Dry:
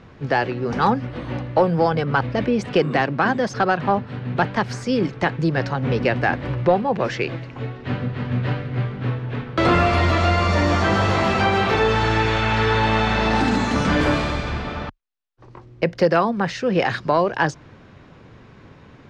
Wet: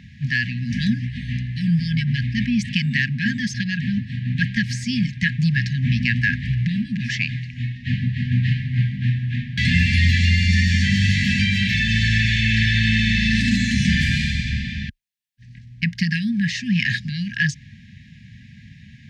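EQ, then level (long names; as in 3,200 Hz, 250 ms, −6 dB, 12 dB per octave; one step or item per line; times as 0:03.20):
high-pass filter 51 Hz
linear-phase brick-wall band-stop 250–1,600 Hz
+4.5 dB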